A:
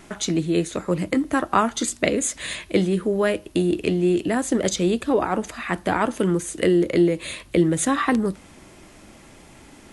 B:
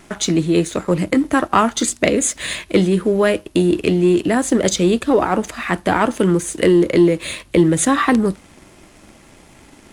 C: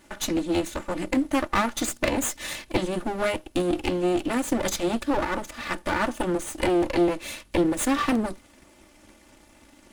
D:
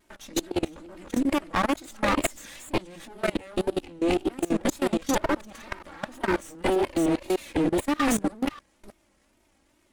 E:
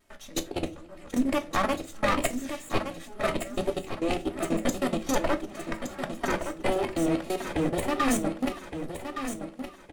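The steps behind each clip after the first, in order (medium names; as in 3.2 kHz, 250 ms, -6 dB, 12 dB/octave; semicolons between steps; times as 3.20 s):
waveshaping leveller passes 1; trim +2 dB
comb filter that takes the minimum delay 3.4 ms; trim -7 dB
chunks repeated in reverse 307 ms, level -0.5 dB; wow and flutter 130 cents; level held to a coarse grid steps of 22 dB
feedback delay 1167 ms, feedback 37%, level -8.5 dB; reverberation RT60 0.25 s, pre-delay 7 ms, DRR 7.5 dB; trim -2.5 dB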